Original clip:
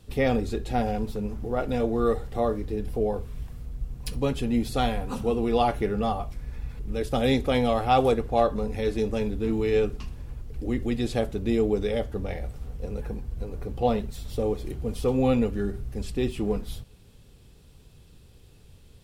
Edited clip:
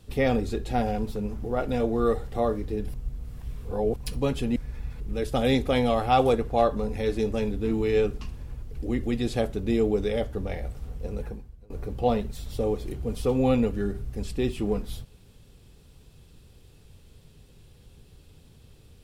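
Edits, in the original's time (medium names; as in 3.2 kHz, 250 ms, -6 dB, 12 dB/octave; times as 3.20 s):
2.94–3.96 s: reverse
4.56–6.35 s: delete
13.01–13.49 s: fade out quadratic, to -20.5 dB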